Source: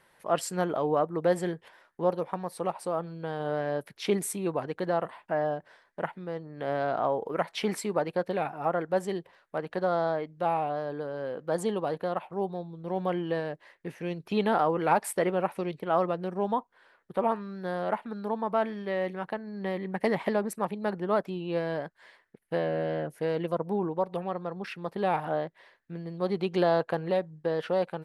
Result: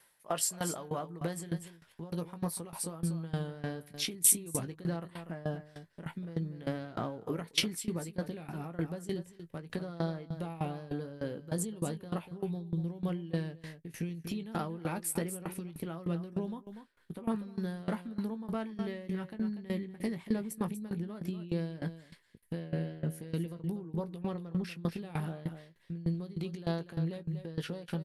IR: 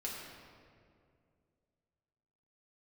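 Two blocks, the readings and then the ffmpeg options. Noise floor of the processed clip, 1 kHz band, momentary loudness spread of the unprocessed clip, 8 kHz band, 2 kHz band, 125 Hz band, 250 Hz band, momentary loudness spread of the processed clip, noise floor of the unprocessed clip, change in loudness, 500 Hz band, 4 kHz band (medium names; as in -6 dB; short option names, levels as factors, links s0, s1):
-63 dBFS, -14.5 dB, 9 LU, +8.0 dB, -9.0 dB, +1.5 dB, -2.5 dB, 7 LU, -67 dBFS, -6.0 dB, -12.5 dB, +1.5 dB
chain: -filter_complex "[0:a]agate=range=0.447:threshold=0.002:ratio=16:detection=peak,asubboost=boost=8.5:cutoff=240,alimiter=limit=0.126:level=0:latency=1:release=69,acompressor=threshold=0.0398:ratio=6,aresample=32000,aresample=44100,crystalizer=i=5:c=0,asplit=2[s0][s1];[s1]adelay=18,volume=0.355[s2];[s0][s2]amix=inputs=2:normalize=0,aecho=1:1:241:0.251,aeval=exprs='val(0)*pow(10,-19*if(lt(mod(3.3*n/s,1),2*abs(3.3)/1000),1-mod(3.3*n/s,1)/(2*abs(3.3)/1000),(mod(3.3*n/s,1)-2*abs(3.3)/1000)/(1-2*abs(3.3)/1000))/20)':c=same"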